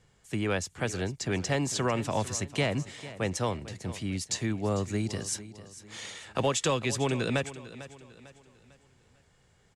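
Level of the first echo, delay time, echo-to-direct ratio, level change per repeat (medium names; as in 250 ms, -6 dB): -15.5 dB, 449 ms, -14.5 dB, -8.0 dB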